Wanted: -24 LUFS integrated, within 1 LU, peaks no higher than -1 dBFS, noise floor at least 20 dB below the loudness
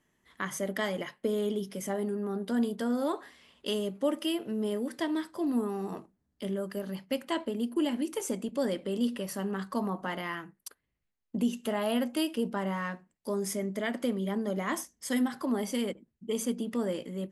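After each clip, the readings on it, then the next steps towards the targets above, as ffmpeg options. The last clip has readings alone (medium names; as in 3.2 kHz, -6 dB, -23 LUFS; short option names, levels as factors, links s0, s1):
loudness -32.5 LUFS; peak level -18.0 dBFS; loudness target -24.0 LUFS
-> -af "volume=2.66"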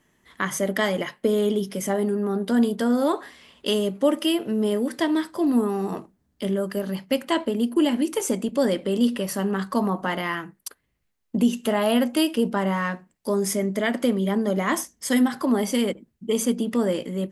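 loudness -24.0 LUFS; peak level -9.5 dBFS; noise floor -71 dBFS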